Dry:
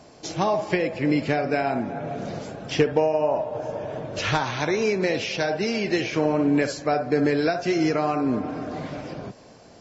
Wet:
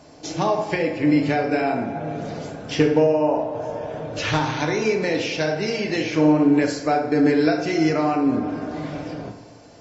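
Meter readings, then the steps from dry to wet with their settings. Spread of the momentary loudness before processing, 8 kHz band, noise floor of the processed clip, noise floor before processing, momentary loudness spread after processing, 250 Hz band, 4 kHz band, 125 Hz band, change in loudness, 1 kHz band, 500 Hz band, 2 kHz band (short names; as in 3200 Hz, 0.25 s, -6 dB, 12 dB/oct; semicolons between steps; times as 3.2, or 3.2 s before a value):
11 LU, n/a, -45 dBFS, -49 dBFS, 13 LU, +5.0 dB, +1.5 dB, +2.5 dB, +3.0 dB, +2.0 dB, +2.0 dB, +1.5 dB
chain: FDN reverb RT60 0.9 s, low-frequency decay 1.05×, high-frequency decay 0.7×, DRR 3.5 dB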